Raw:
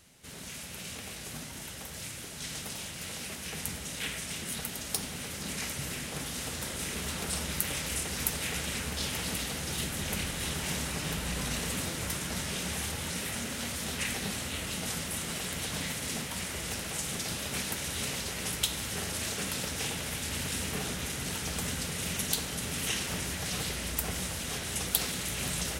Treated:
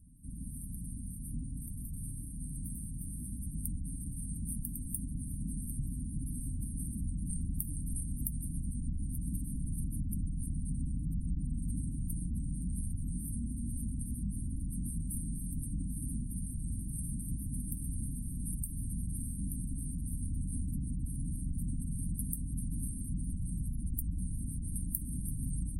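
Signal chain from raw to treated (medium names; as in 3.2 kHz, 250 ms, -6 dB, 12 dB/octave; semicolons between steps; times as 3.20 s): octave divider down 2 oct, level 0 dB; spectral gate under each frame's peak -20 dB strong; bass shelf 200 Hz +6.5 dB; compression 2.5:1, threshold -33 dBFS, peak gain reduction 8.5 dB; brick-wall FIR band-stop 310–8400 Hz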